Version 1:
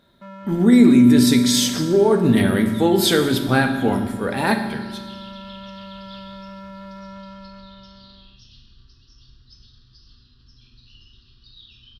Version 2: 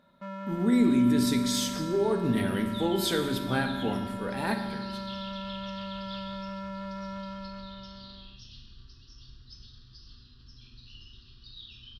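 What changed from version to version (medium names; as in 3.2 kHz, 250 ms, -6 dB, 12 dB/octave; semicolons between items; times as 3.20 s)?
speech -11.0 dB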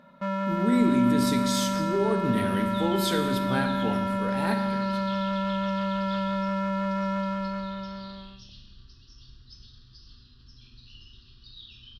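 first sound +10.0 dB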